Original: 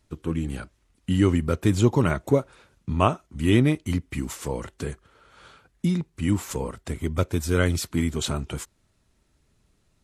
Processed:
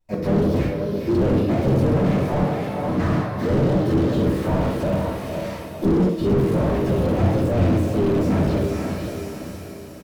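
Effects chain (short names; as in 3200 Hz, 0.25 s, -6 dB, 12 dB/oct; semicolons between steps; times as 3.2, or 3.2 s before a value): gate with hold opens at -48 dBFS; vocal rider within 5 dB 0.5 s; resonator 110 Hz, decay 1.3 s, harmonics all, mix 60%; harmoniser +4 st -1 dB, +5 st -17 dB, +7 st -15 dB; vibrato 2.7 Hz 92 cents; formant shift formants +6 st; diffused feedback echo 0.493 s, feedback 47%, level -9 dB; shoebox room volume 620 m³, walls furnished, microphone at 9.2 m; slew limiter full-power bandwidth 59 Hz; gain -1.5 dB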